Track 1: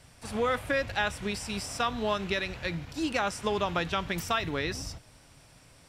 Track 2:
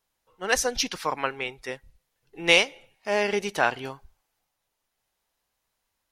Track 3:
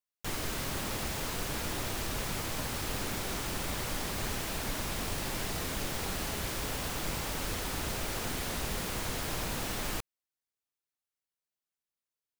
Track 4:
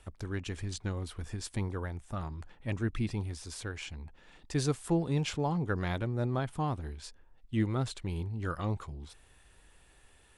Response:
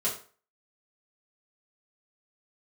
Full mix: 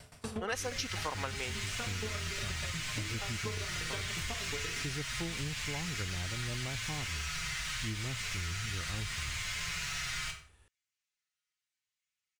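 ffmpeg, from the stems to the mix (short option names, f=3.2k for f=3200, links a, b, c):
-filter_complex "[0:a]acompressor=threshold=-37dB:ratio=6,aeval=exprs='val(0)*pow(10,-22*if(lt(mod(8.4*n/s,1),2*abs(8.4)/1000),1-mod(8.4*n/s,1)/(2*abs(8.4)/1000),(mod(8.4*n/s,1)-2*abs(8.4)/1000)/(1-2*abs(8.4)/1000))/20)':c=same,volume=2dB,asplit=2[a][b];[b]volume=-5.5dB[c];[1:a]volume=0dB,asplit=3[d][e][f];[d]atrim=end=1.59,asetpts=PTS-STARTPTS,afade=t=out:st=1.586:d=0.004:c=hsin[g];[e]atrim=start=1.59:end=3.9,asetpts=PTS-STARTPTS,volume=0[h];[f]atrim=start=3.9,asetpts=PTS-STARTPTS,afade=t=in:d=0.004:c=hsin[i];[g][h][i]concat=n=3:v=0:a=1[j];[2:a]firequalizer=gain_entry='entry(130,0);entry(280,-23);entry(1300,2);entry(2100,10);entry(3500,6);entry(6700,6);entry(13000,-11)':delay=0.05:min_phase=1,asplit=2[k][l];[l]adelay=6.1,afreqshift=-0.78[m];[k][m]amix=inputs=2:normalize=1,adelay=300,volume=-3.5dB,asplit=2[n][o];[o]volume=-3dB[p];[3:a]equalizer=f=75:w=0.99:g=11.5,adelay=300,volume=-6dB[q];[4:a]atrim=start_sample=2205[r];[c][p]amix=inputs=2:normalize=0[s];[s][r]afir=irnorm=-1:irlink=0[t];[a][j][n][q][t]amix=inputs=5:normalize=0,acompressor=threshold=-34dB:ratio=5"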